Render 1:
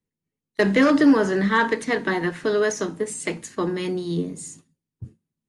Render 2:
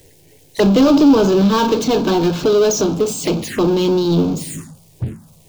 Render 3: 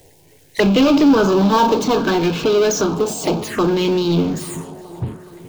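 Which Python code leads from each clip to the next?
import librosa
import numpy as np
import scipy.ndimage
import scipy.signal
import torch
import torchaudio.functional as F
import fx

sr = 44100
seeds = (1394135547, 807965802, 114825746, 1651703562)

y1 = fx.power_curve(x, sr, exponent=0.5)
y1 = fx.env_phaser(y1, sr, low_hz=190.0, high_hz=1900.0, full_db=-18.0)
y1 = y1 * 10.0 ** (3.0 / 20.0)
y2 = fx.echo_tape(y1, sr, ms=420, feedback_pct=78, wet_db=-18.0, lp_hz=4400.0, drive_db=3.0, wow_cents=12)
y2 = fx.bell_lfo(y2, sr, hz=0.62, low_hz=760.0, high_hz=2600.0, db=10)
y2 = y2 * 10.0 ** (-2.0 / 20.0)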